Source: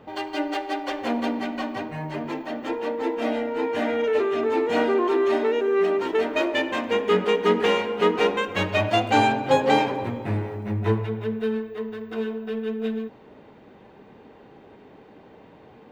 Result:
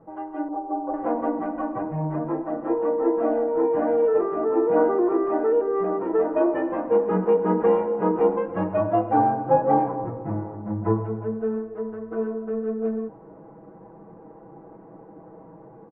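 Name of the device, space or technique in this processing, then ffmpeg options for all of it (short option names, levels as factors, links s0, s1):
action camera in a waterproof case: -filter_complex "[0:a]lowpass=5200,asettb=1/sr,asplit=3[s0][s1][s2];[s0]atrim=end=0.484[s3];[s1]atrim=start=0.48:end=0.94,asetpts=PTS-STARTPTS,afade=t=in:d=0.004:c=qsin,afade=t=out:st=0.456:d=0.004:c=qsin,lowpass=f=1000:w=0.5412,lowpass=f=1000:w=1.3066[s4];[s2]atrim=start=0.936[s5];[s3][s4]acrossfade=d=0.004:c1=hsin:c2=qsin[s6];[s6][s5]acrossfade=d=0.004:c1=qsin:c2=hsin,lowpass=f=1200:w=0.5412,lowpass=f=1200:w=1.3066,aecho=1:1:6.1:0.97,dynaudnorm=f=480:g=3:m=2.24,volume=0.501" -ar 24000 -c:a aac -b:a 48k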